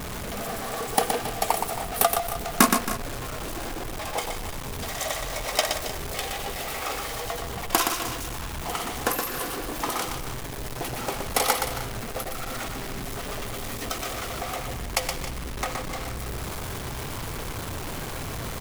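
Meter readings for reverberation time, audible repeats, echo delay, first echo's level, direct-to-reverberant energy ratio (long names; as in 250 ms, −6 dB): no reverb audible, 3, 120 ms, −5.5 dB, no reverb audible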